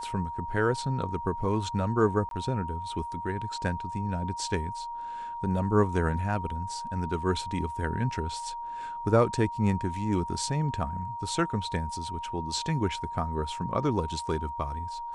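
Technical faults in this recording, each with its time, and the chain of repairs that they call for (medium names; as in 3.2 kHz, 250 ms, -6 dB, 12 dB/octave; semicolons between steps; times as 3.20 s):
whine 940 Hz -34 dBFS
2.29–2.31 s: dropout 22 ms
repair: band-stop 940 Hz, Q 30; interpolate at 2.29 s, 22 ms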